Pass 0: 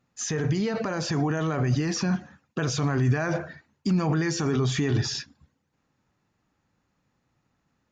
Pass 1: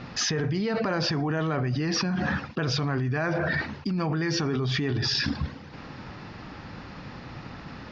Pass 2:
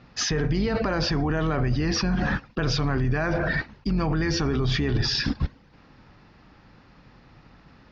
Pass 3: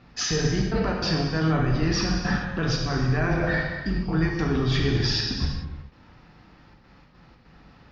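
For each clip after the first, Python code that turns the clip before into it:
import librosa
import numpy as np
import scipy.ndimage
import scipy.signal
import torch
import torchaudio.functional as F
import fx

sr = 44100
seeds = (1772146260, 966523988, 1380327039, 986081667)

y1 = scipy.signal.sosfilt(scipy.signal.ellip(4, 1.0, 60, 5100.0, 'lowpass', fs=sr, output='sos'), x)
y1 = fx.env_flatten(y1, sr, amount_pct=100)
y1 = F.gain(torch.from_numpy(y1), -7.0).numpy()
y2 = fx.octave_divider(y1, sr, octaves=2, level_db=-4.0)
y2 = fx.upward_expand(y2, sr, threshold_db=-35.0, expansion=2.5)
y2 = F.gain(torch.from_numpy(y2), 4.5).numpy()
y3 = fx.step_gate(y2, sr, bpm=147, pattern='xxxxxx.xx.xx.xx', floor_db=-24.0, edge_ms=4.5)
y3 = fx.rev_gated(y3, sr, seeds[0], gate_ms=460, shape='falling', drr_db=-1.0)
y3 = F.gain(torch.from_numpy(y3), -2.5).numpy()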